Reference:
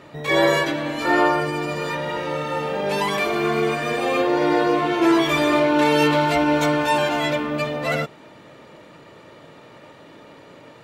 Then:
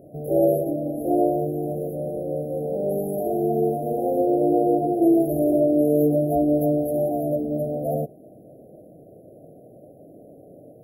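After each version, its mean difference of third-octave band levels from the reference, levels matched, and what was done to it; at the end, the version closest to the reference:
14.0 dB: linear-phase brick-wall band-stop 780–10,000 Hz
high-shelf EQ 7,200 Hz +6.5 dB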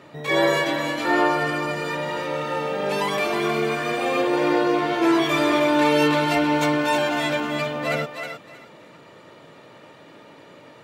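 1.5 dB: high-pass filter 95 Hz
on a send: feedback echo with a high-pass in the loop 314 ms, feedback 22%, high-pass 720 Hz, level −5 dB
on the sum: level −2 dB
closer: second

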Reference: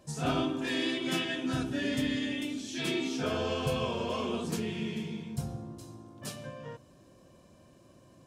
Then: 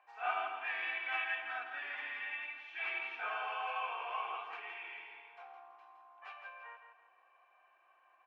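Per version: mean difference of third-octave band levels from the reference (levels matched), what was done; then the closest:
17.0 dB: Chebyshev band-pass filter 780–2,500 Hz, order 3
comb filter 2.6 ms, depth 53%
on a send: repeating echo 165 ms, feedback 34%, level −8 dB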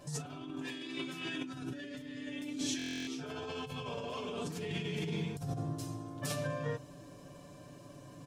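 7.5 dB: comb filter 6.9 ms, depth 77%
compressor whose output falls as the input rises −38 dBFS, ratio −1
buffer that repeats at 0:02.77, samples 1,024, times 12
level −2 dB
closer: second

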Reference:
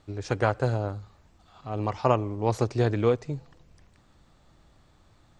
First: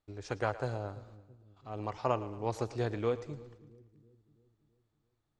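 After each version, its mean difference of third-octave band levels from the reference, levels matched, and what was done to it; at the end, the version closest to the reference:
3.0 dB: noise gate −51 dBFS, range −16 dB
parametric band 140 Hz −4 dB 2.2 octaves
echo with a time of its own for lows and highs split 340 Hz, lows 332 ms, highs 112 ms, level −16 dB
level −7.5 dB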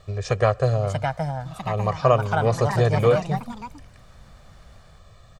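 6.0 dB: comb filter 1.7 ms, depth 98%
in parallel at −1 dB: downward compressor, threshold −34 dBFS, peak gain reduction 20 dB
on the sum: delay with pitch and tempo change per echo 701 ms, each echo +4 semitones, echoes 3, each echo −6 dB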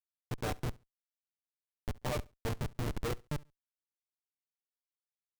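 12.5 dB: tuned comb filter 150 Hz, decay 0.32 s, harmonics all, mix 90%
comparator with hysteresis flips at −33 dBFS
repeating echo 69 ms, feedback 21%, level −23.5 dB
level +7.5 dB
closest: first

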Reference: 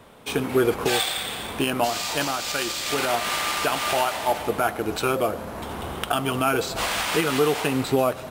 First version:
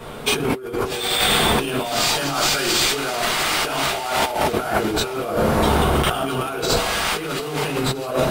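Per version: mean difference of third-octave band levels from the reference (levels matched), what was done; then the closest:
6.5 dB: rectangular room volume 33 cubic metres, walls mixed, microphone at 1 metre
compressor whose output falls as the input rises −25 dBFS, ratio −1
feedback echo with a high-pass in the loop 659 ms, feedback 57%, level −15 dB
level +2.5 dB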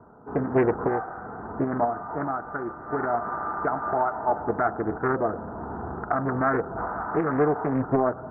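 15.0 dB: Butterworth low-pass 1,500 Hz 72 dB per octave
notch comb filter 550 Hz
highs frequency-modulated by the lows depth 0.56 ms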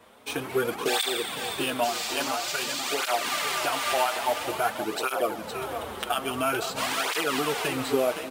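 3.5 dB: low-shelf EQ 200 Hz −12 dB
repeating echo 515 ms, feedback 44%, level −8 dB
through-zero flanger with one copy inverted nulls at 0.49 Hz, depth 7.6 ms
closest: third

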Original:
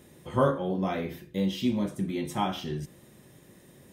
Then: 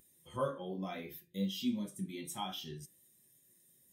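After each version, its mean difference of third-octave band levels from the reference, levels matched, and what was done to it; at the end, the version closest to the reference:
7.0 dB: first-order pre-emphasis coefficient 0.9
in parallel at +2.5 dB: brickwall limiter −39.5 dBFS, peak gain reduction 11 dB
on the sum: flanger 0.68 Hz, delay 9.5 ms, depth 9 ms, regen +71%
every bin expanded away from the loudest bin 1.5 to 1
level +6.5 dB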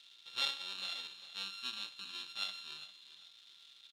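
15.0 dB: samples sorted by size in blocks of 32 samples
surface crackle 570 per second −39 dBFS
resonant band-pass 3,600 Hz, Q 9.3
repeating echo 401 ms, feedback 31%, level −14.5 dB
level +7.5 dB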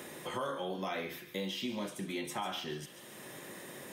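11.0 dB: high-pass filter 920 Hz 6 dB per octave
brickwall limiter −28 dBFS, peak gain reduction 10 dB
on a send: delay with a high-pass on its return 142 ms, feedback 42%, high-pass 1,900 Hz, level −13 dB
on the sum: multiband upward and downward compressor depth 70%
level +1 dB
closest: first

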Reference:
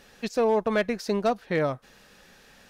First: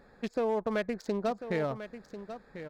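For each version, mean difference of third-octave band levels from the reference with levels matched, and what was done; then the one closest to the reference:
5.0 dB: adaptive Wiener filter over 15 samples
downward compressor 2 to 1, threshold −30 dBFS, peak gain reduction 6 dB
on a send: single-tap delay 1,044 ms −11.5 dB
on the sum: level −1 dB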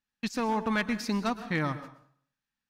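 8.5 dB: noise gate −43 dBFS, range −35 dB
flat-topped bell 510 Hz −12 dB 1.1 octaves
dense smooth reverb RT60 0.58 s, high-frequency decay 0.8×, pre-delay 105 ms, DRR 12.5 dB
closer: first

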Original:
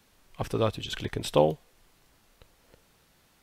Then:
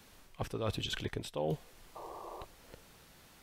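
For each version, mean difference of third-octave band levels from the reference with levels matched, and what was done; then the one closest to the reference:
5.5 dB: reversed playback
downward compressor 10 to 1, threshold −37 dBFS, peak gain reduction 21 dB
reversed playback
sound drawn into the spectrogram noise, 0:01.95–0:02.45, 330–1,200 Hz −51 dBFS
level +4.5 dB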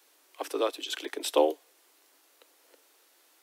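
7.5 dB: Butterworth high-pass 280 Hz 96 dB per octave
high-shelf EQ 6,200 Hz +7.5 dB
level −1 dB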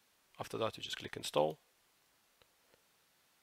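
3.5 dB: high-pass filter 140 Hz 6 dB per octave
low-shelf EQ 490 Hz −8 dB
level −6.5 dB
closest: third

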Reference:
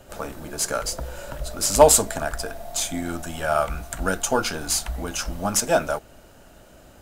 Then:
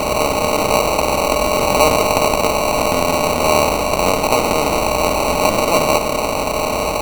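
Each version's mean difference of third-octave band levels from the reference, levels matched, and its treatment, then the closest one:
10.5 dB: compressor on every frequency bin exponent 0.2
parametric band 6,900 Hz −12 dB 0.77 octaves
decimation without filtering 26×
level −3.5 dB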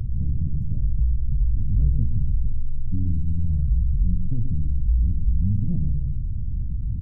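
23.0 dB: inverse Chebyshev low-pass filter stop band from 800 Hz, stop band 80 dB
tape wow and flutter 120 cents
on a send: single-tap delay 123 ms −8.5 dB
on the sum: envelope flattener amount 70%
level +8.5 dB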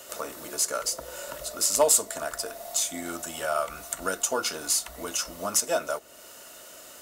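5.5 dB: bass and treble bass −14 dB, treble +6 dB
downward compressor 1.5 to 1, threshold −26 dBFS, peak gain reduction 7.5 dB
notch comb filter 800 Hz
one half of a high-frequency compander encoder only
level −1 dB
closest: third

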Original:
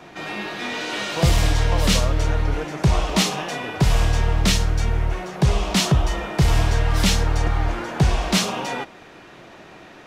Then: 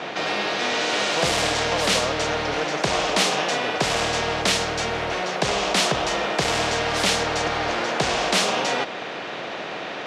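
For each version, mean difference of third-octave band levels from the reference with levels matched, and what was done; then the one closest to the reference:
5.5 dB: flat-topped bell 580 Hz +8 dB 1 octave
in parallel at −7 dB: hard clipping −13.5 dBFS, distortion −15 dB
on the sum: band-pass filter 260–4,100 Hz
every bin compressed towards the loudest bin 2 to 1
level −5.5 dB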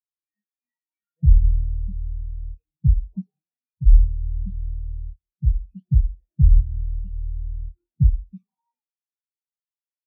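30.5 dB: loose part that buzzes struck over −29 dBFS, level −14 dBFS
phase shifter 0.64 Hz, delay 1.1 ms, feedback 37%
on a send: single-tap delay 171 ms −15 dB
on the sum: every bin expanded away from the loudest bin 4 to 1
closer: first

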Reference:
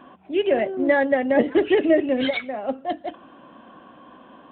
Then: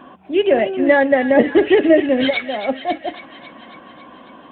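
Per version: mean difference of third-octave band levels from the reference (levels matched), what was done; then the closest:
1.5 dB: delay with a high-pass on its return 274 ms, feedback 65%, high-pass 1,700 Hz, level −8.5 dB
level +5.5 dB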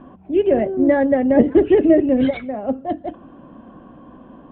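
4.0 dB: spectral tilt −4.5 dB per octave
level −1 dB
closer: first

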